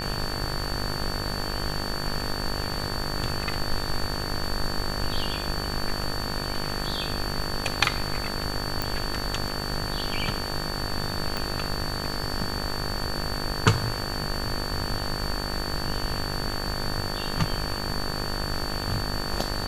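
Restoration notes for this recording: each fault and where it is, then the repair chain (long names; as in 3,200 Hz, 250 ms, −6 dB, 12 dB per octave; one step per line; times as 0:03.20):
mains buzz 50 Hz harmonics 37 −33 dBFS
whistle 4,500 Hz −34 dBFS
0:08.82: click
0:11.37: click −12 dBFS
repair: click removal
notch filter 4,500 Hz, Q 30
hum removal 50 Hz, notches 37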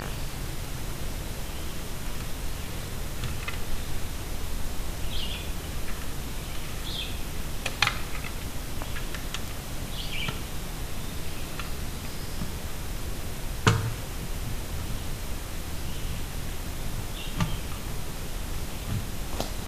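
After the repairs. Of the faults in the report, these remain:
0:11.37: click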